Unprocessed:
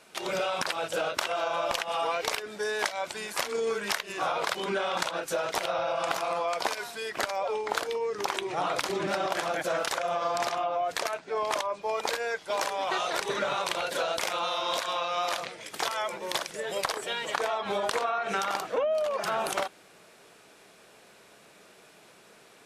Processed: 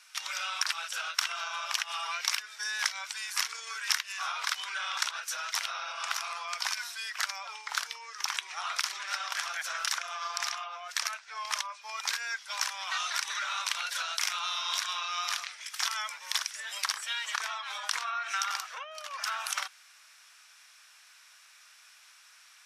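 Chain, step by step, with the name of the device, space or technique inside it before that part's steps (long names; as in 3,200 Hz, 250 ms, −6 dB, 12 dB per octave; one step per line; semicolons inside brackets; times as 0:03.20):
headphones lying on a table (high-pass filter 1,200 Hz 24 dB per octave; parametric band 5,600 Hz +8.5 dB 0.31 octaves)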